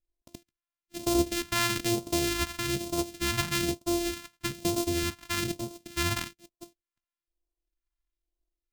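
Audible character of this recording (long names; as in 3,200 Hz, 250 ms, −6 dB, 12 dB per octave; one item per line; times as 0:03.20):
a buzz of ramps at a fixed pitch in blocks of 128 samples
phaser sweep stages 2, 1.1 Hz, lowest notch 450–1,700 Hz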